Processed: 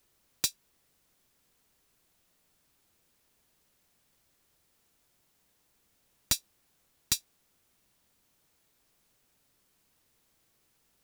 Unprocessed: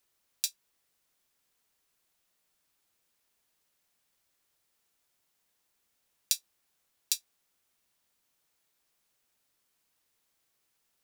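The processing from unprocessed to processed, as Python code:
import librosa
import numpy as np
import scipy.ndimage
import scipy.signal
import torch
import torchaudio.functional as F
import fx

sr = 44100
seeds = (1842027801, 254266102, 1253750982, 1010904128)

y = 10.0 ** (-20.0 / 20.0) * (np.abs((x / 10.0 ** (-20.0 / 20.0) + 3.0) % 4.0 - 2.0) - 1.0)
y = fx.low_shelf(y, sr, hz=420.0, db=10.0)
y = y * 10.0 ** (4.5 / 20.0)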